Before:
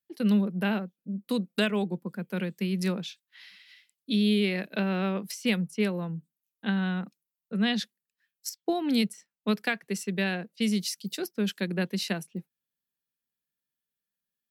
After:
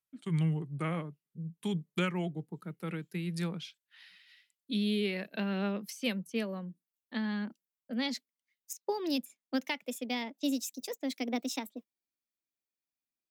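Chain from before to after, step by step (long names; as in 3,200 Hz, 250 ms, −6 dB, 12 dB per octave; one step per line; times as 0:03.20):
gliding playback speed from 75% → 143%
phase shifter 0.53 Hz, delay 3.8 ms, feedback 22%
level −6 dB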